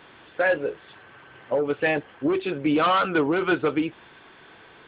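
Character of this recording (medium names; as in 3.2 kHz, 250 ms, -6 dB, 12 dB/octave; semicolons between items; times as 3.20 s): noise floor -51 dBFS; spectral tilt -3.5 dB/octave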